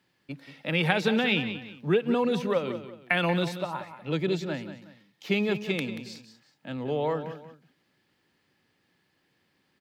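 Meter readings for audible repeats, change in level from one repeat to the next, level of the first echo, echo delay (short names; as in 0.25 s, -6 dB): 2, -9.5 dB, -11.5 dB, 0.183 s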